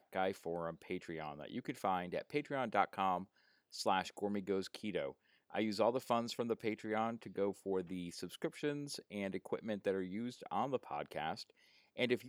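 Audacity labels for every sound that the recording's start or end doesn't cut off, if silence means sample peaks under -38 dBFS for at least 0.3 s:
3.760000	5.100000	sound
5.550000	11.400000	sound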